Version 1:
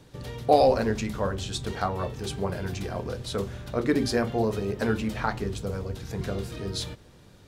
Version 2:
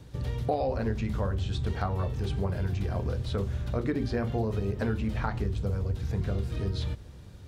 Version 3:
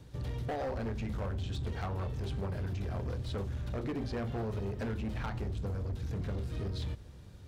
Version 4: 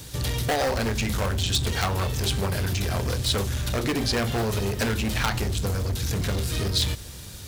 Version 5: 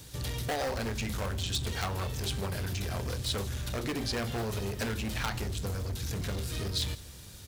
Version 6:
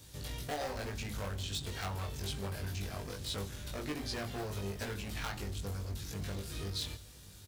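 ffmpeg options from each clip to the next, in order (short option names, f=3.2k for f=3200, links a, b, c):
-filter_complex "[0:a]acrossover=split=4000[a][b];[b]acompressor=threshold=-52dB:ratio=4:attack=1:release=60[c];[a][c]amix=inputs=2:normalize=0,equalizer=f=65:w=0.66:g=13.5,acompressor=threshold=-24dB:ratio=5,volume=-1.5dB"
-af "asoftclip=type=hard:threshold=-28dB,volume=-4dB"
-af "crystalizer=i=8.5:c=0,volume=9dB"
-af "aecho=1:1:161:0.075,volume=-8dB"
-filter_complex "[0:a]asplit=2[a][b];[b]adelay=20,volume=-2dB[c];[a][c]amix=inputs=2:normalize=0,volume=-8dB"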